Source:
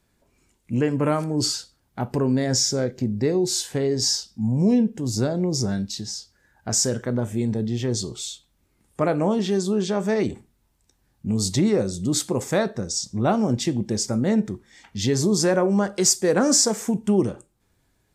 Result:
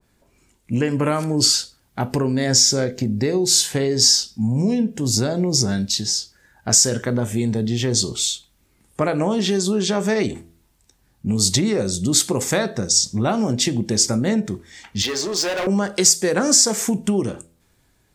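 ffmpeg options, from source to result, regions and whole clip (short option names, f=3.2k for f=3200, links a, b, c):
-filter_complex "[0:a]asettb=1/sr,asplit=3[a][b][c];[a]atrim=end=15.024[d];[b]atrim=start=15.02:end=15.67,asetpts=PTS-STARTPTS,afade=t=in:d=0.004:c=qsin,afade=t=out:st=0.646:d=0.004:c=qsin,highpass=510,lowpass=4.4k,asoftclip=type=hard:threshold=-26.5dB,asplit=2[e][f];[f]adelay=26,volume=-14dB[g];[e][g]amix=inputs=2:normalize=0,atrim=end_sample=28665[h];[c]atrim=start=15.666[i];[d][h]acrossfade=d=0.004:c1=hsin:c2=qsin[j];[j][i]acrossfade=d=0.004:c1=qsin:c2=hsin,acompressor=threshold=-21dB:ratio=6,bandreject=f=83.63:t=h:w=4,bandreject=f=167.26:t=h:w=4,bandreject=f=250.89:t=h:w=4,bandreject=f=334.52:t=h:w=4,bandreject=f=418.15:t=h:w=4,bandreject=f=501.78:t=h:w=4,bandreject=f=585.41:t=h:w=4,bandreject=f=669.04:t=h:w=4,adynamicequalizer=threshold=0.00562:dfrequency=1500:dqfactor=0.7:tfrequency=1500:tqfactor=0.7:attack=5:release=100:ratio=0.375:range=3:mode=boostabove:tftype=highshelf,volume=5dB"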